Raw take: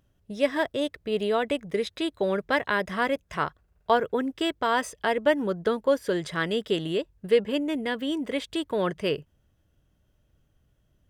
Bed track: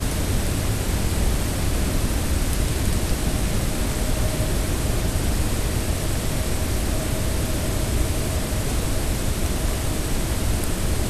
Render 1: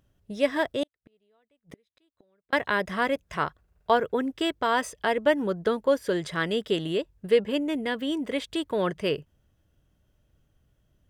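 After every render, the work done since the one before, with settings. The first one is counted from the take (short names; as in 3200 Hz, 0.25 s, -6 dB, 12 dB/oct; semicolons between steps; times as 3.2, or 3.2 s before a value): 0.83–2.53 flipped gate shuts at -28 dBFS, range -42 dB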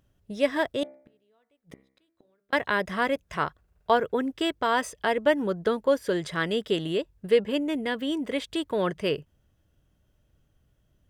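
0.8–2.55 de-hum 66.27 Hz, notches 36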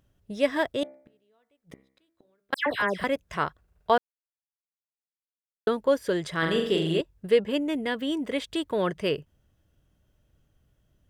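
2.54–3.04 dispersion lows, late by 0.123 s, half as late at 2500 Hz; 3.98–5.67 mute; 6.38–7.01 flutter echo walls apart 7.4 m, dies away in 0.62 s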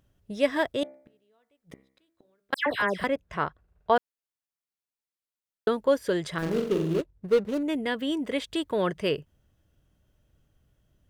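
3.07–3.96 high shelf 3800 Hz -11.5 dB; 6.38–7.63 median filter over 41 samples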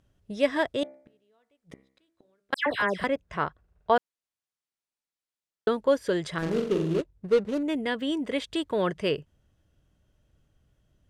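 LPF 10000 Hz 12 dB/oct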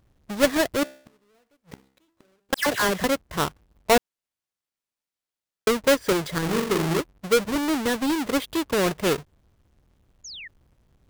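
half-waves squared off; 10.24–10.48 painted sound fall 1700–7000 Hz -39 dBFS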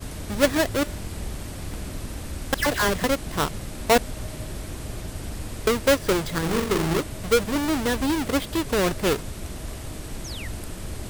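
add bed track -11 dB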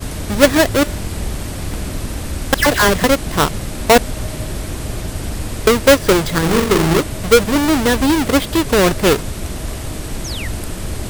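gain +9.5 dB; limiter -1 dBFS, peak gain reduction 2.5 dB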